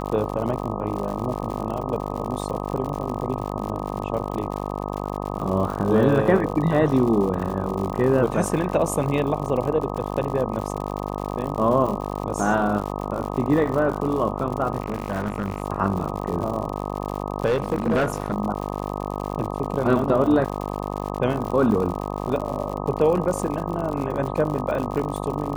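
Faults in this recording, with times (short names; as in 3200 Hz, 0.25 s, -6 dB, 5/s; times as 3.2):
buzz 50 Hz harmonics 25 -29 dBFS
crackle 100/s -29 dBFS
14.8–15.62 clipped -19.5 dBFS
17.45–18.34 clipped -16.5 dBFS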